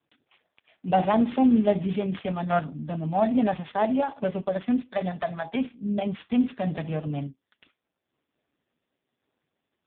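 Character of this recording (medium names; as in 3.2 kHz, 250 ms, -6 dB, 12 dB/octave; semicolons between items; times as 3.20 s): a buzz of ramps at a fixed pitch in blocks of 8 samples; tremolo saw down 1.2 Hz, depth 35%; AMR-NB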